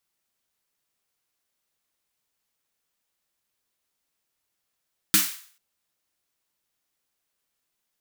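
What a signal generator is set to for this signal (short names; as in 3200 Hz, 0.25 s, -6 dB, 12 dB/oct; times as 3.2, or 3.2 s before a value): snare drum length 0.44 s, tones 200 Hz, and 310 Hz, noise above 1200 Hz, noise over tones 9 dB, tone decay 0.23 s, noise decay 0.49 s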